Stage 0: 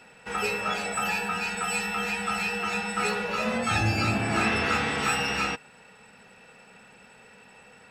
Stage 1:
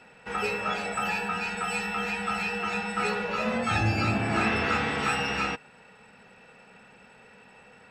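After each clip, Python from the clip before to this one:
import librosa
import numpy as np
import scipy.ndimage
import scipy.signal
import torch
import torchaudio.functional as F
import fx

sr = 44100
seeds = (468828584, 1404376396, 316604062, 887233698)

y = fx.lowpass(x, sr, hz=3700.0, slope=6)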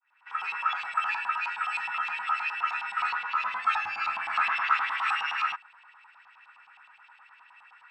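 y = fx.fade_in_head(x, sr, length_s=0.58)
y = fx.filter_lfo_bandpass(y, sr, shape='saw_up', hz=9.6, low_hz=800.0, high_hz=3600.0, q=2.1)
y = fx.low_shelf_res(y, sr, hz=710.0, db=-13.5, q=3.0)
y = F.gain(torch.from_numpy(y), 2.0).numpy()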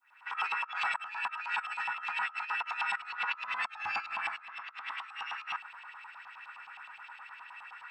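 y = fx.over_compress(x, sr, threshold_db=-36.0, ratio=-0.5)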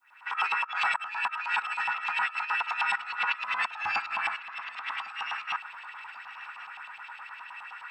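y = fx.echo_feedback(x, sr, ms=1102, feedback_pct=36, wet_db=-18.0)
y = F.gain(torch.from_numpy(y), 5.0).numpy()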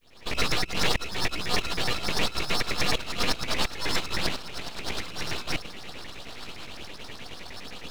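y = np.abs(x)
y = F.gain(torch.from_numpy(y), 5.5).numpy()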